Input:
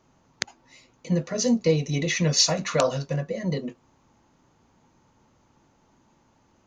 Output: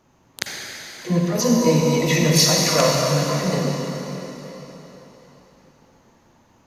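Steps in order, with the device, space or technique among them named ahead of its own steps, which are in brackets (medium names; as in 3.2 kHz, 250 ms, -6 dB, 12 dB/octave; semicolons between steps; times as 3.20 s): shimmer-style reverb (harmony voices +12 st -11 dB; reverberation RT60 4.0 s, pre-delay 40 ms, DRR -1.5 dB); trim +2 dB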